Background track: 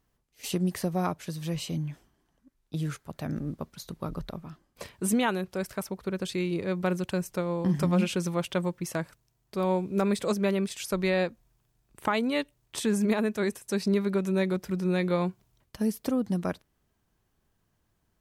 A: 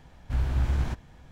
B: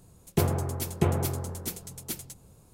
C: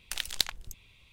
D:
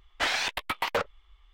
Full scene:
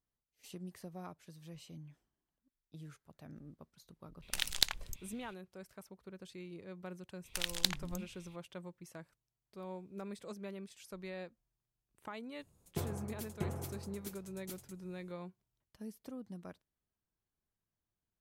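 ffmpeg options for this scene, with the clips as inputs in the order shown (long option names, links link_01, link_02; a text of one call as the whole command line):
ffmpeg -i bed.wav -i cue0.wav -i cue1.wav -i cue2.wav -filter_complex "[3:a]asplit=2[link_01][link_02];[0:a]volume=-19dB[link_03];[link_01]atrim=end=1.12,asetpts=PTS-STARTPTS,volume=-1.5dB,afade=type=in:duration=0.004:curve=hsin,afade=type=out:start_time=1.116:duration=0.004:curve=hsin,adelay=4220[link_04];[link_02]atrim=end=1.12,asetpts=PTS-STARTPTS,volume=-3dB,afade=type=in:duration=0.004:curve=hsin,afade=type=out:start_time=1.116:duration=0.004:curve=hsin,adelay=7240[link_05];[2:a]atrim=end=2.73,asetpts=PTS-STARTPTS,volume=-14dB,afade=type=in:duration=0.004:curve=hsin,afade=type=out:start_time=2.726:duration=0.004:curve=hsin,adelay=12390[link_06];[link_03][link_04][link_05][link_06]amix=inputs=4:normalize=0" out.wav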